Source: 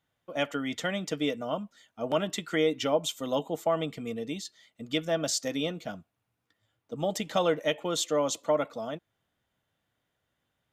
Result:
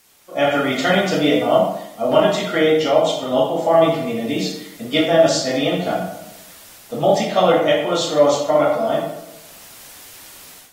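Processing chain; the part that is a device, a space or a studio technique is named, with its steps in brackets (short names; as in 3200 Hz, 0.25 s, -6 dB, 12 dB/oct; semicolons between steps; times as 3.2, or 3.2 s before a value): filmed off a television (BPF 150–6000 Hz; bell 700 Hz +6 dB 0.42 oct; reverb RT60 0.80 s, pre-delay 6 ms, DRR -6 dB; white noise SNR 30 dB; AGC gain up to 14 dB; gain -1.5 dB; AAC 48 kbps 48000 Hz)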